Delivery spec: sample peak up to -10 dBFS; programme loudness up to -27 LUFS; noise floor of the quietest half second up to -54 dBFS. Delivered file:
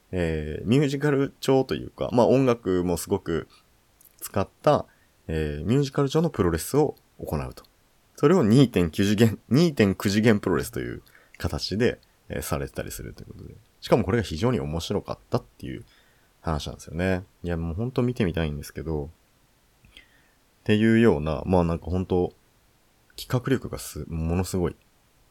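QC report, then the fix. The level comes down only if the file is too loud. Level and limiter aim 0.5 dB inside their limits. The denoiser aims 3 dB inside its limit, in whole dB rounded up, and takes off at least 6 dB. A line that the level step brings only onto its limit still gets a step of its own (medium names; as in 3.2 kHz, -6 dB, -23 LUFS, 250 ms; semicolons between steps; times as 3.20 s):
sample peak -5.0 dBFS: fail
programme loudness -25.0 LUFS: fail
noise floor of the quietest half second -62 dBFS: pass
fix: trim -2.5 dB; peak limiter -10.5 dBFS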